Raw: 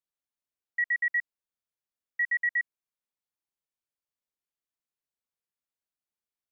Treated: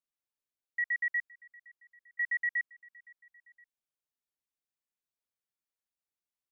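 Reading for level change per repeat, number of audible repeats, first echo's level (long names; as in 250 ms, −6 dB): −5.0 dB, 2, −23.5 dB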